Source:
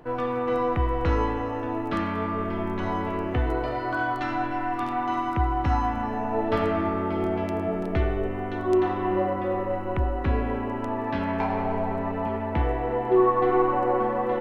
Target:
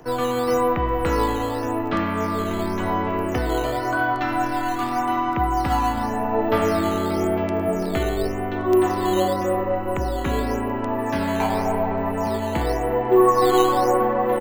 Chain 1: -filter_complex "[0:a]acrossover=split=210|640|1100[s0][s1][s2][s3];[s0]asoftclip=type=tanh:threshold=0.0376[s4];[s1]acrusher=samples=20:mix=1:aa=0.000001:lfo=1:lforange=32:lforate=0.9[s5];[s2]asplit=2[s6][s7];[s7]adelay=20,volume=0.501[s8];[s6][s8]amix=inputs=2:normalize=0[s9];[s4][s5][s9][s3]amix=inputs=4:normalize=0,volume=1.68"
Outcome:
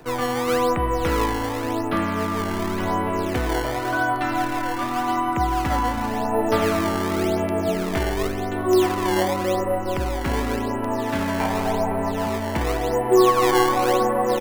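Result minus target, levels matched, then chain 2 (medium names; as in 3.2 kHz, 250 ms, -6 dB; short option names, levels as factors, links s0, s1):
decimation with a swept rate: distortion +10 dB
-filter_complex "[0:a]acrossover=split=210|640|1100[s0][s1][s2][s3];[s0]asoftclip=type=tanh:threshold=0.0376[s4];[s1]acrusher=samples=7:mix=1:aa=0.000001:lfo=1:lforange=11.2:lforate=0.9[s5];[s2]asplit=2[s6][s7];[s7]adelay=20,volume=0.501[s8];[s6][s8]amix=inputs=2:normalize=0[s9];[s4][s5][s9][s3]amix=inputs=4:normalize=0,volume=1.68"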